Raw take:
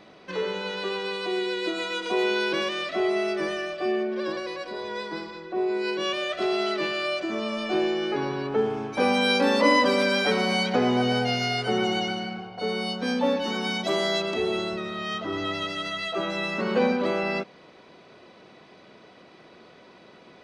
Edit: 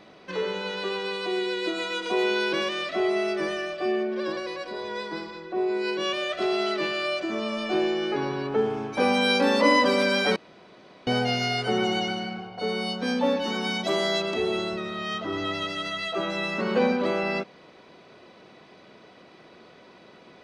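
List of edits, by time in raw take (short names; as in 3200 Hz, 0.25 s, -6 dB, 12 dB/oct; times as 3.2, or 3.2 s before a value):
10.36–11.07 room tone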